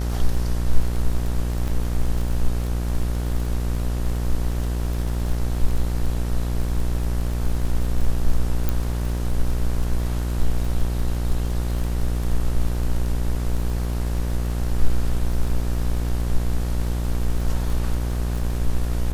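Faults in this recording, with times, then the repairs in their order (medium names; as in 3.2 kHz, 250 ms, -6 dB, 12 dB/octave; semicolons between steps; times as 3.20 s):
buzz 60 Hz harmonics 32 -24 dBFS
crackle 26 per s -27 dBFS
1.68 s: dropout 3.9 ms
8.69 s: pop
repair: de-click; de-hum 60 Hz, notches 32; interpolate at 1.68 s, 3.9 ms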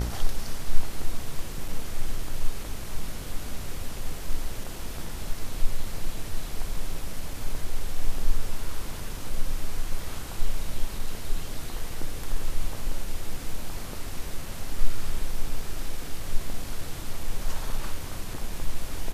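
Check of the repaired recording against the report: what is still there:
nothing left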